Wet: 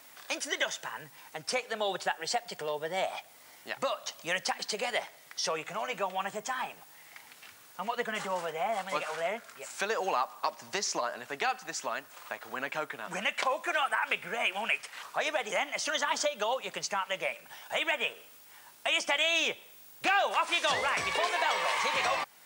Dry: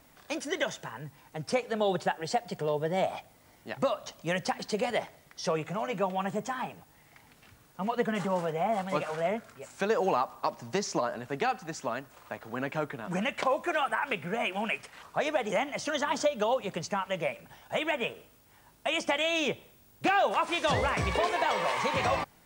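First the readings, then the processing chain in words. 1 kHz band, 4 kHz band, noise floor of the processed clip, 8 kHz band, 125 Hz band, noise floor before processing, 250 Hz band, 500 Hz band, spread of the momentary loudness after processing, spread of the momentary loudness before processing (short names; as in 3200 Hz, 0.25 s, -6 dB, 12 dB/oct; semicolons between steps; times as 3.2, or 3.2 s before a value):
-1.5 dB, +3.5 dB, -55 dBFS, +5.0 dB, -14.5 dB, -60 dBFS, -10.5 dB, -4.5 dB, 14 LU, 9 LU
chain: in parallel at +1 dB: compressor, threshold -42 dBFS, peak gain reduction 19 dB; on the sum: HPF 1400 Hz 6 dB/oct; gain +2.5 dB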